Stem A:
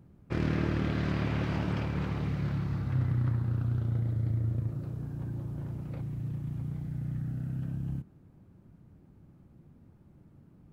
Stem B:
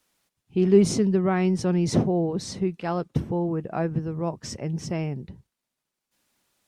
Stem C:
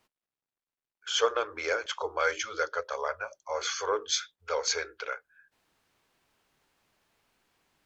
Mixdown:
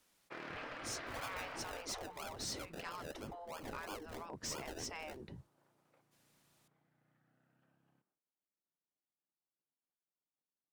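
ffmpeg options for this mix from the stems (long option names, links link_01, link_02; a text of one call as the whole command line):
ffmpeg -i stem1.wav -i stem2.wav -i stem3.wav -filter_complex "[0:a]agate=range=-33dB:threshold=-46dB:ratio=3:detection=peak,highpass=710,highshelf=frequency=3800:gain=-9,volume=-4.5dB,afade=type=out:start_time=1.53:duration=0.45:silence=0.223872[link_01];[1:a]acompressor=threshold=-27dB:ratio=6,volume=-2.5dB[link_02];[2:a]agate=range=-33dB:threshold=-49dB:ratio=3:detection=peak,acrusher=samples=32:mix=1:aa=0.000001:lfo=1:lforange=19.2:lforate=3,volume=-15.5dB[link_03];[link_01][link_02][link_03]amix=inputs=3:normalize=0,afftfilt=real='re*lt(hypot(re,im),0.0501)':imag='im*lt(hypot(re,im),0.0501)':win_size=1024:overlap=0.75,asoftclip=type=hard:threshold=-37dB" out.wav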